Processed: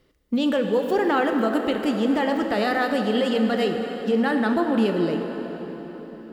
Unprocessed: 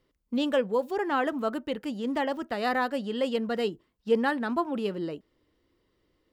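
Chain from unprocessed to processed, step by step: notch 1000 Hz, Q 11; limiter -23.5 dBFS, peak gain reduction 10.5 dB; plate-style reverb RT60 4.8 s, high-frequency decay 0.7×, DRR 4 dB; gain +9 dB

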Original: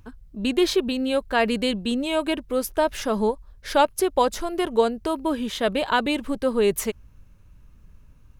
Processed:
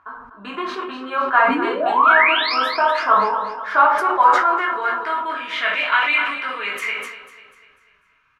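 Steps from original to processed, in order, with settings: compressor, threshold -21 dBFS, peak gain reduction 8 dB; band-pass sweep 1100 Hz -> 2300 Hz, 4.1–5.51; painted sound rise, 1.48–2.55, 240–5500 Hz -34 dBFS; bell 1300 Hz +14 dB 1.3 oct; on a send: feedback echo 0.247 s, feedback 47%, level -11 dB; on the sum: shoebox room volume 320 m³, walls furnished, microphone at 3.2 m; dynamic EQ 2200 Hz, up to +5 dB, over -37 dBFS, Q 3.3; sustainer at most 56 dB/s; gain +2.5 dB

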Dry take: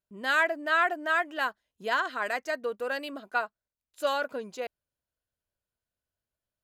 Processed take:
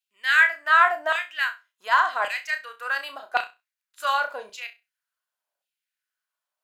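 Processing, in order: LFO high-pass saw down 0.89 Hz 670–2900 Hz; flutter echo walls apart 5.6 m, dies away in 0.24 s; gain +2.5 dB

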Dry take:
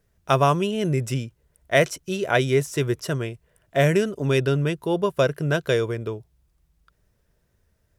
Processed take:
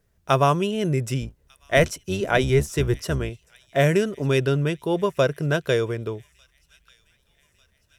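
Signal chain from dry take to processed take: 1.21–3.3 octaver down 1 oct, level -3 dB; thin delay 1.197 s, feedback 57%, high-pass 2900 Hz, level -22 dB

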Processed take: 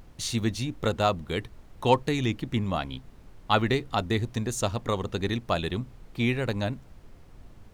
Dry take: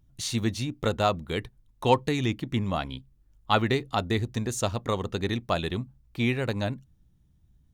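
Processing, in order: expander -49 dBFS; added noise brown -47 dBFS

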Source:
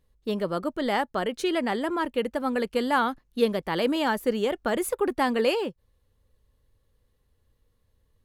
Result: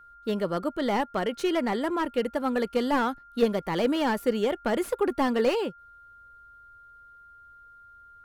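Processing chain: whine 1400 Hz -49 dBFS; slew limiter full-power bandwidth 86 Hz

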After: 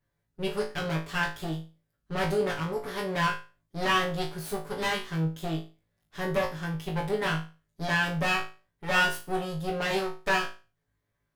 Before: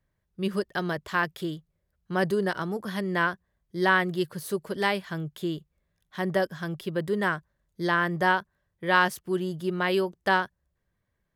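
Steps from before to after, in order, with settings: minimum comb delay 7 ms; flutter echo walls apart 3.2 m, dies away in 0.32 s; gain -2 dB

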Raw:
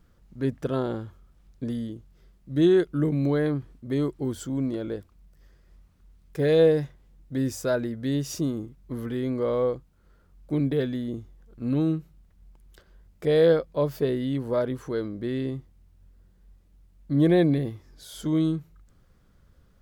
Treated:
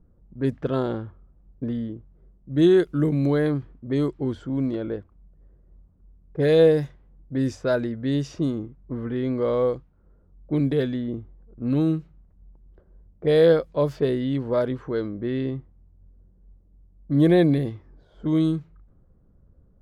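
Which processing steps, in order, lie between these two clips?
low-pass opened by the level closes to 570 Hz, open at -20 dBFS; gain +2.5 dB

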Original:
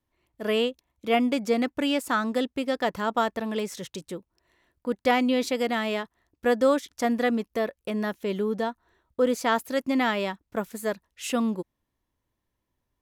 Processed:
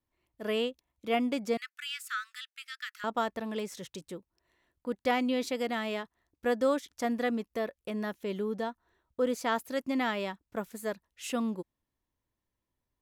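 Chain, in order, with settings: 1.57–3.04 steep high-pass 1300 Hz 72 dB/oct; gain -6 dB

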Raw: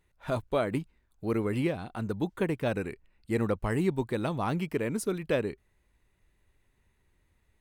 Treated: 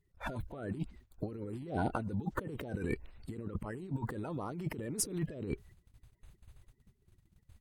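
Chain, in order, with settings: bin magnitudes rounded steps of 30 dB; tilt shelf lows +3.5 dB, about 850 Hz; negative-ratio compressor -39 dBFS, ratio -1; gate -54 dBFS, range -16 dB

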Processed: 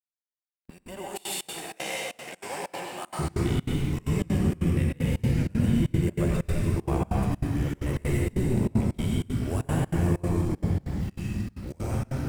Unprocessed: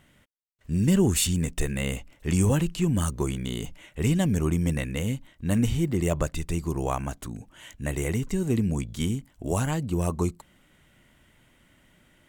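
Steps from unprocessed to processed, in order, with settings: harmonic-percussive split percussive -8 dB; echoes that change speed 0.39 s, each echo -3 st, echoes 3, each echo -6 dB; sample gate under -47.5 dBFS; compressor 4:1, threshold -25 dBFS, peak gain reduction 8 dB; 0.7–3.19 resonant high-pass 740 Hz, resonance Q 4.1; gate with hold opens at -33 dBFS; bell 6500 Hz -9.5 dB 0.41 oct; plate-style reverb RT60 1.8 s, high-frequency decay 0.75×, pre-delay 80 ms, DRR -4.5 dB; step gate "xxx.xx.xxx.x" 192 bpm -24 dB

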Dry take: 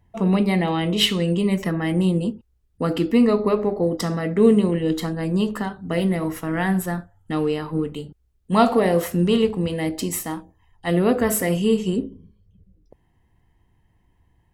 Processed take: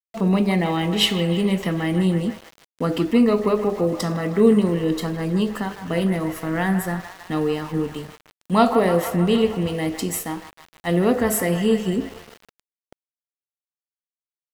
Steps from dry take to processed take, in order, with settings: band-limited delay 0.156 s, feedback 71%, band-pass 1300 Hz, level -9 dB; sample gate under -38 dBFS

